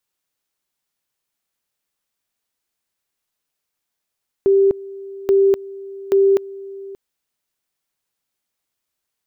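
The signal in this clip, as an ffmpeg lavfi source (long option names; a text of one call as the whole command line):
ffmpeg -f lavfi -i "aevalsrc='pow(10,(-10-20*gte(mod(t,0.83),0.25))/20)*sin(2*PI*392*t)':duration=2.49:sample_rate=44100" out.wav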